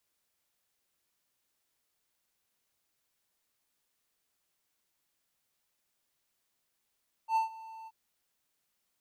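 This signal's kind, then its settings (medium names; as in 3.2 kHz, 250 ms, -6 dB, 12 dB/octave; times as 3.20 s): ADSR triangle 892 Hz, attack 79 ms, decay 128 ms, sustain -20.5 dB, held 0.59 s, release 41 ms -21.5 dBFS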